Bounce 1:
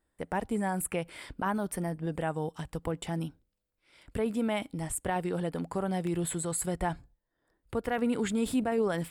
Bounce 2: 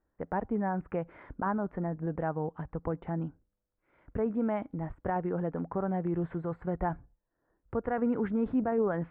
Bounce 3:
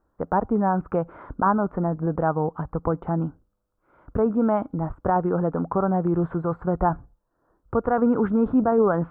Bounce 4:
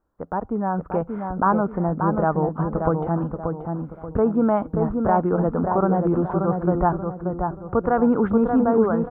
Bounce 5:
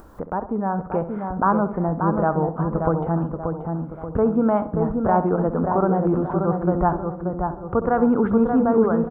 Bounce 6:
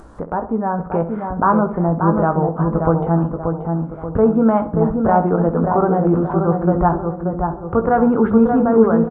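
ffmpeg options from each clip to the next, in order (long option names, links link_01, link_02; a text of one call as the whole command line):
ffmpeg -i in.wav -af "lowpass=frequency=1600:width=0.5412,lowpass=frequency=1600:width=1.3066" out.wav
ffmpeg -i in.wav -af "highshelf=frequency=1600:width_type=q:width=3:gain=-6.5,volume=8.5dB" out.wav
ffmpeg -i in.wav -filter_complex "[0:a]dynaudnorm=framelen=330:gausssize=5:maxgain=7dB,asplit=2[link_01][link_02];[link_02]adelay=582,lowpass=frequency=1600:poles=1,volume=-4.5dB,asplit=2[link_03][link_04];[link_04]adelay=582,lowpass=frequency=1600:poles=1,volume=0.39,asplit=2[link_05][link_06];[link_06]adelay=582,lowpass=frequency=1600:poles=1,volume=0.39,asplit=2[link_07][link_08];[link_08]adelay=582,lowpass=frequency=1600:poles=1,volume=0.39,asplit=2[link_09][link_10];[link_10]adelay=582,lowpass=frequency=1600:poles=1,volume=0.39[link_11];[link_01][link_03][link_05][link_07][link_09][link_11]amix=inputs=6:normalize=0,volume=-4.5dB" out.wav
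ffmpeg -i in.wav -filter_complex "[0:a]acompressor=mode=upward:threshold=-25dB:ratio=2.5,asplit=2[link_01][link_02];[link_02]adelay=66,lowpass=frequency=1900:poles=1,volume=-12dB,asplit=2[link_03][link_04];[link_04]adelay=66,lowpass=frequency=1900:poles=1,volume=0.48,asplit=2[link_05][link_06];[link_06]adelay=66,lowpass=frequency=1900:poles=1,volume=0.48,asplit=2[link_07][link_08];[link_08]adelay=66,lowpass=frequency=1900:poles=1,volume=0.48,asplit=2[link_09][link_10];[link_10]adelay=66,lowpass=frequency=1900:poles=1,volume=0.48[link_11];[link_01][link_03][link_05][link_07][link_09][link_11]amix=inputs=6:normalize=0" out.wav
ffmpeg -i in.wav -filter_complex "[0:a]asplit=2[link_01][link_02];[link_02]adelay=18,volume=-8dB[link_03];[link_01][link_03]amix=inputs=2:normalize=0,aresample=22050,aresample=44100,volume=3.5dB" out.wav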